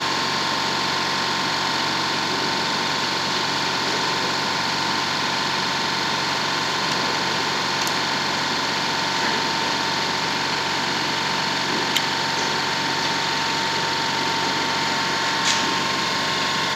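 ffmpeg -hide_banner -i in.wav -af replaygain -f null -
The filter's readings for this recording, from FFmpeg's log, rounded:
track_gain = +4.2 dB
track_peak = 0.614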